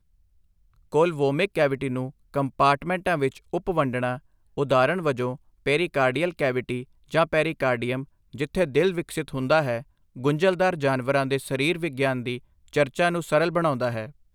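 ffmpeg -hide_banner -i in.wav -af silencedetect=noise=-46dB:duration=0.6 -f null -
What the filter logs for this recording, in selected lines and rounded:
silence_start: 0.00
silence_end: 0.92 | silence_duration: 0.92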